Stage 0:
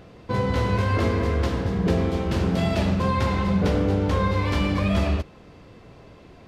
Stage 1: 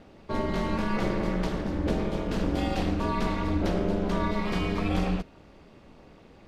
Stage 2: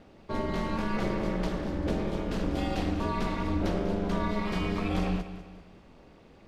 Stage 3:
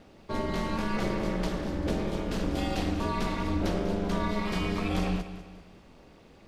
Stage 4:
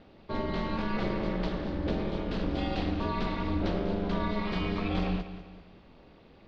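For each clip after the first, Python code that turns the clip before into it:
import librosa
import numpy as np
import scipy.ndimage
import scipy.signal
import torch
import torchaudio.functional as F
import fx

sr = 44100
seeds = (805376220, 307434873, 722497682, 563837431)

y1 = x * np.sin(2.0 * np.pi * 110.0 * np.arange(len(x)) / sr)
y1 = y1 * librosa.db_to_amplitude(-2.0)
y2 = fx.echo_feedback(y1, sr, ms=196, feedback_pct=43, wet_db=-13)
y2 = y2 * librosa.db_to_amplitude(-2.5)
y3 = fx.high_shelf(y2, sr, hz=4100.0, db=6.5)
y4 = scipy.signal.sosfilt(scipy.signal.cheby1(3, 1.0, 4200.0, 'lowpass', fs=sr, output='sos'), y3)
y4 = y4 * librosa.db_to_amplitude(-1.0)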